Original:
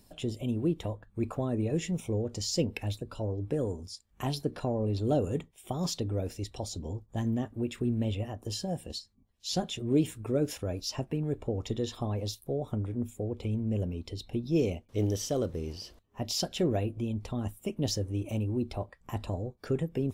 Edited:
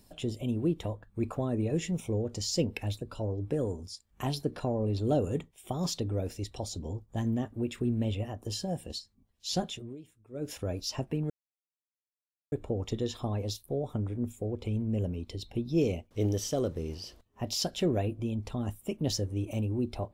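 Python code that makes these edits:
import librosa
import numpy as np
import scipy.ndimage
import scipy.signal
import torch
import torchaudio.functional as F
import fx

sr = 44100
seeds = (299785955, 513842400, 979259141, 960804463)

y = fx.edit(x, sr, fx.fade_down_up(start_s=9.64, length_s=0.98, db=-22.5, fade_s=0.32),
    fx.insert_silence(at_s=11.3, length_s=1.22), tone=tone)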